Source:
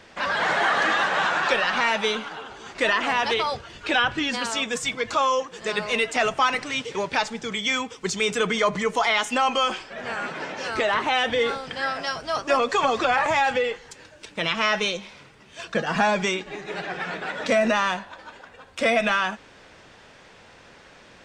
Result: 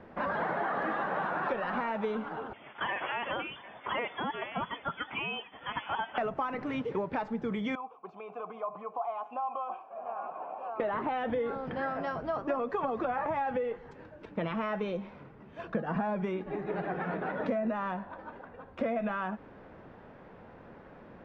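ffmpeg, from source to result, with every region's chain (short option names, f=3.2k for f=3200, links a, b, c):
-filter_complex "[0:a]asettb=1/sr,asplit=3[a][b][c];[a]atrim=end=2.534[d];[b]atrim=start=2.53:end=6.18,asetpts=PTS-STARTPTS,afade=t=in:d=0.004:c=qsin,afade=t=out:st=3.646:d=0.004:c=qsin,aecho=1:1:750:0.075,atrim=end_sample=160965,lowpass=f=3.1k:t=q:w=0.5098,lowpass=f=3.1k:t=q:w=0.6013,lowpass=f=3.1k:t=q:w=0.9,lowpass=f=3.1k:t=q:w=2.563,afreqshift=-3600,highpass=f=140:p=1[e];[c]atrim=start=6.176[f];[d][e]acrossfade=d=0.004:c1=hsin:c2=qsin[g];[g][f]acrossfade=d=0.004:c1=qsin:c2=hsin,asettb=1/sr,asplit=3[h][i][j];[h]atrim=end=7.754[k];[i]atrim=start=7.75:end=10.8,asetpts=PTS-STARTPTS,afade=t=in:d=0.004:c=qsin,afade=t=out:st=3.046:d=0.004:c=qsin,equalizer=f=950:t=o:w=0.53:g=11,acompressor=threshold=-21dB:ratio=3:attack=3.2:release=140:knee=1:detection=peak,asplit=3[l][m][n];[l]bandpass=f=730:t=q:w=8,volume=0dB[o];[m]bandpass=f=1.09k:t=q:w=8,volume=-6dB[p];[n]bandpass=f=2.44k:t=q:w=8,volume=-9dB[q];[o][p][q]amix=inputs=3:normalize=0[r];[j]atrim=start=10.796[s];[k][r]acrossfade=d=0.004:c1=hsin:c2=qsin[t];[t][s]acrossfade=d=0.004:c1=qsin:c2=hsin,lowpass=1.1k,equalizer=f=210:w=1.1:g=4.5,acompressor=threshold=-29dB:ratio=6"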